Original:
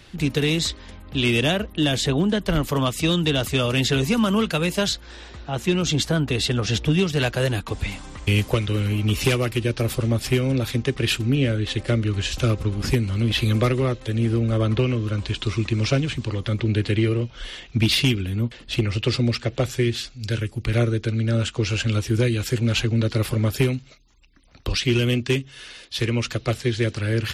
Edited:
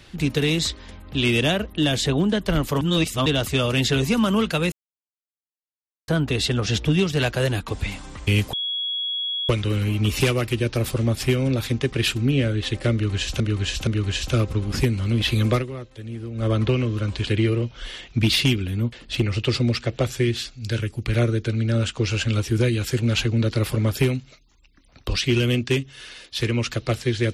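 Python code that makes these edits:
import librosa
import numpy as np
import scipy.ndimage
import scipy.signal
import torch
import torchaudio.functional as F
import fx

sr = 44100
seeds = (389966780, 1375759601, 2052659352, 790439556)

y = fx.edit(x, sr, fx.reverse_span(start_s=2.81, length_s=0.45),
    fx.silence(start_s=4.72, length_s=1.36),
    fx.insert_tone(at_s=8.53, length_s=0.96, hz=3340.0, db=-23.5),
    fx.repeat(start_s=11.97, length_s=0.47, count=3),
    fx.fade_down_up(start_s=13.64, length_s=0.93, db=-11.5, fade_s=0.13),
    fx.cut(start_s=15.37, length_s=1.49), tone=tone)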